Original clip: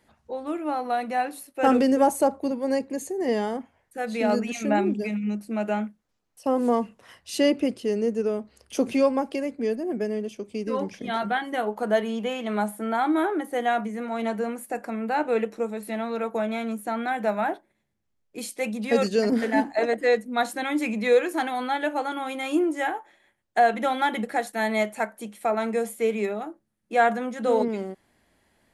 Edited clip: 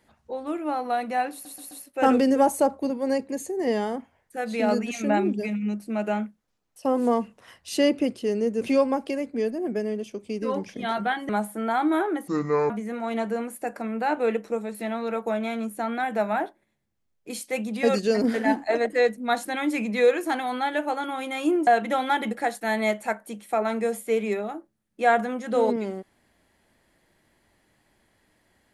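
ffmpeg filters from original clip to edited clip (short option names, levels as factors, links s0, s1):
-filter_complex "[0:a]asplit=9[s0][s1][s2][s3][s4][s5][s6][s7][s8];[s0]atrim=end=1.452[s9];[s1]atrim=start=1.318:end=1.452[s10];[s2]atrim=start=1.318:end=1.452[s11];[s3]atrim=start=1.318:end=8.222[s12];[s4]atrim=start=8.858:end=11.542[s13];[s5]atrim=start=12.528:end=13.524[s14];[s6]atrim=start=13.52:end=13.78,asetpts=PTS-STARTPTS,asetrate=27342,aresample=44100[s15];[s7]atrim=start=13.776:end=22.752[s16];[s8]atrim=start=23.588[s17];[s9][s10]acrossfade=d=0.004:c1=hsin:c2=hsin[s18];[s18][s11]acrossfade=d=0.004:c1=hsin:c2=hsin[s19];[s19][s12]acrossfade=d=0.004:c1=hsin:c2=hsin[s20];[s20][s13]acrossfade=d=0.004:c1=hsin:c2=hsin[s21];[s21][s14]acrossfade=d=0.004:c1=hsin:c2=hsin[s22];[s22][s15]acrossfade=d=0.004:c1=hsin:c2=hsin[s23];[s23][s16]acrossfade=d=0.004:c1=hsin:c2=hsin[s24];[s24][s17]acrossfade=d=0.004:c1=hsin:c2=hsin"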